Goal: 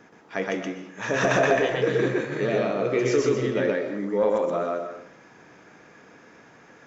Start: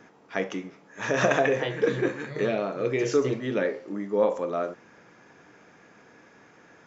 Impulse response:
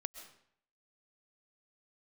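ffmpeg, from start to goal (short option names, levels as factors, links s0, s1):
-filter_complex "[0:a]acontrast=32,asoftclip=type=tanh:threshold=0.596,asplit=2[s0][s1];[1:a]atrim=start_sample=2205,adelay=123[s2];[s1][s2]afir=irnorm=-1:irlink=0,volume=1.26[s3];[s0][s3]amix=inputs=2:normalize=0,volume=0.562"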